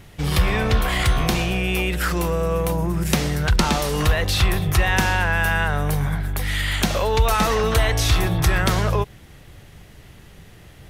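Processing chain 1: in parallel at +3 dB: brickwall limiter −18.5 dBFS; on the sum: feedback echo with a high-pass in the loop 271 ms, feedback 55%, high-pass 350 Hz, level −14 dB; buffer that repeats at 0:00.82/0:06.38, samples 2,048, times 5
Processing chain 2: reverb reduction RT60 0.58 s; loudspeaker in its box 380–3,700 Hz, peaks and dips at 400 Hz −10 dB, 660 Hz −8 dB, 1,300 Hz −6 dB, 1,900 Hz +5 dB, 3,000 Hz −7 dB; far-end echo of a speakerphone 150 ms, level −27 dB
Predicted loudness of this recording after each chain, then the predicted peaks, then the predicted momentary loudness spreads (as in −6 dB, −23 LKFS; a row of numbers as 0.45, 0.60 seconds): −16.5, −27.0 LKFS; −4.0, −10.0 dBFS; 4, 9 LU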